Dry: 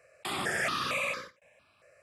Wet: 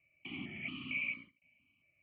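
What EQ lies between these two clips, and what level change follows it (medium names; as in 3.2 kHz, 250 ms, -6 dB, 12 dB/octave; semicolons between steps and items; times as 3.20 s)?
cascade formant filter i; treble shelf 2.7 kHz +11 dB; static phaser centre 2.4 kHz, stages 8; +5.0 dB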